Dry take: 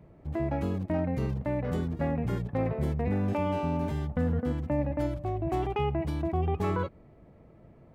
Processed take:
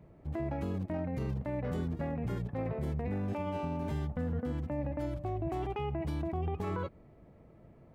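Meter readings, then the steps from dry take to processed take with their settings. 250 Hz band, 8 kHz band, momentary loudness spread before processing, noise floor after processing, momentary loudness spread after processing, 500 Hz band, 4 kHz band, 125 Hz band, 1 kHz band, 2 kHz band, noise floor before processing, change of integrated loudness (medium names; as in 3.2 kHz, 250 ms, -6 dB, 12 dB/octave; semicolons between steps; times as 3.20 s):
-5.5 dB, no reading, 3 LU, -58 dBFS, 1 LU, -6.0 dB, -5.5 dB, -5.0 dB, -6.0 dB, -6.0 dB, -55 dBFS, -5.5 dB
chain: peak limiter -24 dBFS, peak gain reduction 6 dB; trim -2.5 dB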